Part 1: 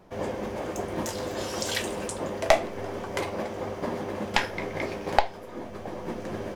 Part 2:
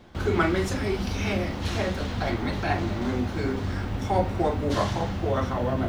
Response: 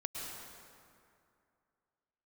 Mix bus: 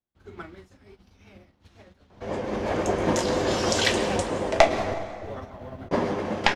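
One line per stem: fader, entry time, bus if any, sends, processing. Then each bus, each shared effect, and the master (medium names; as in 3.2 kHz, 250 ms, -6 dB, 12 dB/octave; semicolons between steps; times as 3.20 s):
-3.0 dB, 2.10 s, muted 4.94–5.91 s, send -5.5 dB, low-pass 6.7 kHz 12 dB/octave; level rider gain up to 7.5 dB
2.09 s -15 dB -> 2.59 s -4.5 dB, 0.00 s, no send, upward expansion 2.5:1, over -38 dBFS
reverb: on, RT60 2.4 s, pre-delay 98 ms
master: vibrato 5.7 Hz 40 cents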